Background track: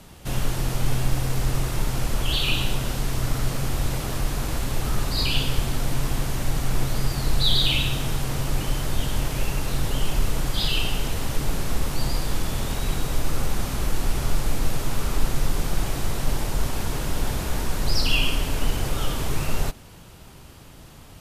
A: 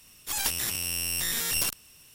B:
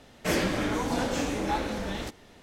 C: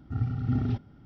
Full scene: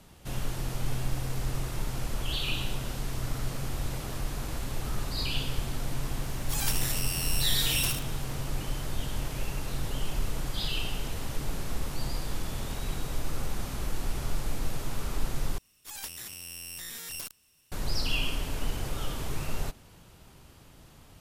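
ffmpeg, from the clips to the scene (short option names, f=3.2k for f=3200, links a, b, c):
-filter_complex "[1:a]asplit=2[a][b];[0:a]volume=-8dB[c];[a]aecho=1:1:76:0.422[d];[c]asplit=2[e][f];[e]atrim=end=15.584[g];[b]atrim=end=2.14,asetpts=PTS-STARTPTS,volume=-11.5dB[h];[f]atrim=start=17.716[i];[d]atrim=end=2.14,asetpts=PTS-STARTPTS,volume=-3.5dB,afade=t=in:d=0.004:c=hsin,afade=t=out:st=2.136:d=0.004:c=hsin,adelay=6220[j];[g][h]acrossfade=d=0.004:c1=hsin:c2=hsin[k];[k][i]acrossfade=d=0.004:c1=hsin:c2=hsin[l];[l][j]amix=inputs=2:normalize=0"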